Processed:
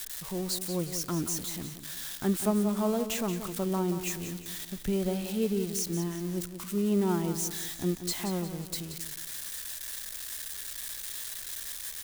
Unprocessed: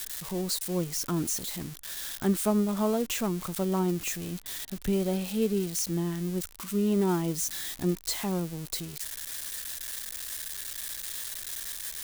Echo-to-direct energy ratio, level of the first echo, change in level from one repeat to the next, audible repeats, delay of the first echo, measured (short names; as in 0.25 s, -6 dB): -9.0 dB, -10.0 dB, -7.5 dB, 3, 0.179 s